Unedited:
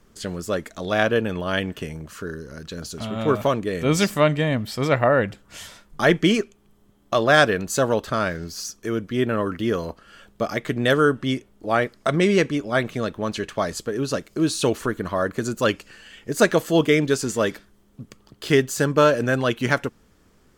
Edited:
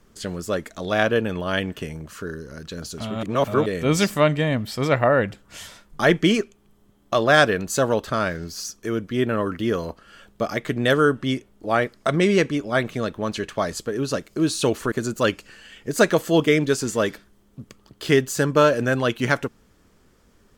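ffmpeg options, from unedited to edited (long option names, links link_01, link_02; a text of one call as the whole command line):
ffmpeg -i in.wav -filter_complex "[0:a]asplit=4[link_01][link_02][link_03][link_04];[link_01]atrim=end=3.232[link_05];[link_02]atrim=start=3.228:end=3.662,asetpts=PTS-STARTPTS,areverse[link_06];[link_03]atrim=start=3.658:end=14.922[link_07];[link_04]atrim=start=15.328[link_08];[link_05][link_06]acrossfade=duration=0.004:curve1=hsin:curve2=hsin[link_09];[link_09][link_07]acrossfade=duration=0.004:curve1=hsin:curve2=hsin[link_10];[link_10][link_08]acrossfade=duration=0.004:curve1=hsin:curve2=hsin" out.wav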